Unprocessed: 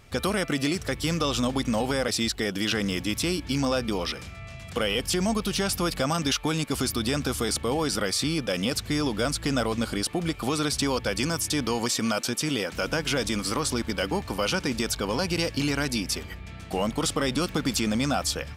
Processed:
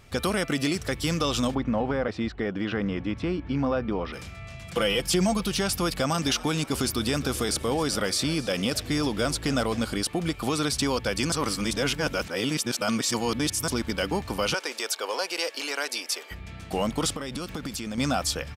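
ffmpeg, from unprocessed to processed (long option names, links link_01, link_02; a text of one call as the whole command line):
ffmpeg -i in.wav -filter_complex "[0:a]asplit=3[link_01][link_02][link_03];[link_01]afade=type=out:start_time=1.54:duration=0.02[link_04];[link_02]lowpass=1700,afade=type=in:start_time=1.54:duration=0.02,afade=type=out:start_time=4.12:duration=0.02[link_05];[link_03]afade=type=in:start_time=4.12:duration=0.02[link_06];[link_04][link_05][link_06]amix=inputs=3:normalize=0,asettb=1/sr,asplit=3[link_07][link_08][link_09];[link_07]atrim=end=4.694[link_10];[link_08]atrim=start=4.69:end=5.46,asetpts=PTS-STARTPTS,afade=type=in:duration=0.004:curve=qsin,afade=type=out:start_time=0.766:duration=0.004:curve=qsin,aecho=1:1:5.9:0.57,atrim=end_sample=33957[link_11];[link_09]atrim=start=5.456[link_12];[link_10][link_11]acrossfade=duration=0.004:curve1=hsin:curve2=qsin[link_13];[link_13][link_12]acrossfade=duration=0.004:curve1=qsin:curve2=hsin,asplit=3[link_14][link_15][link_16];[link_14]afade=type=out:start_time=6.13:duration=0.02[link_17];[link_15]asplit=5[link_18][link_19][link_20][link_21][link_22];[link_19]adelay=264,afreqshift=72,volume=-18dB[link_23];[link_20]adelay=528,afreqshift=144,volume=-23.7dB[link_24];[link_21]adelay=792,afreqshift=216,volume=-29.4dB[link_25];[link_22]adelay=1056,afreqshift=288,volume=-35dB[link_26];[link_18][link_23][link_24][link_25][link_26]amix=inputs=5:normalize=0,afade=type=in:start_time=6.13:duration=0.02,afade=type=out:start_time=9.8:duration=0.02[link_27];[link_16]afade=type=in:start_time=9.8:duration=0.02[link_28];[link_17][link_27][link_28]amix=inputs=3:normalize=0,asettb=1/sr,asplit=3[link_29][link_30][link_31];[link_29]atrim=end=14.544[link_32];[link_30]atrim=start=14.54:end=16.31,asetpts=PTS-STARTPTS,afade=type=in:duration=0.004:curve=qsin,afade=type=out:start_time=1.766:duration=0.004:curve=qsin,highpass=frequency=440:width=0.5412,highpass=frequency=440:width=1.3066[link_33];[link_31]atrim=start=16.306[link_34];[link_32][link_33]acrossfade=duration=0.004:curve1=hsin:curve2=qsin[link_35];[link_35][link_34]acrossfade=duration=0.004:curve1=qsin:curve2=hsin,asettb=1/sr,asplit=3[link_36][link_37][link_38];[link_36]atrim=end=17.124[link_39];[link_37]atrim=start=17.12:end=17.98,asetpts=PTS-STARTPTS,afade=type=in:duration=0.004:curve=qsin,afade=type=out:start_time=0.856:duration=0.004:curve=qsin,acompressor=threshold=-29dB:ratio=10:attack=3.2:release=140:knee=1:detection=peak[link_40];[link_38]atrim=start=17.976[link_41];[link_39][link_40]acrossfade=duration=0.004:curve1=hsin:curve2=qsin[link_42];[link_42][link_41]acrossfade=duration=0.004:curve1=qsin:curve2=hsin,asplit=3[link_43][link_44][link_45];[link_43]atrim=end=11.322[link_46];[link_44]atrim=start=11.318:end=13.682,asetpts=PTS-STARTPTS,areverse[link_47];[link_45]atrim=start=13.678[link_48];[link_46][link_47]acrossfade=duration=0.004:curve1=hsin:curve2=hsin[link_49];[link_49][link_48]acrossfade=duration=0.004:curve1=hsin:curve2=hsin" out.wav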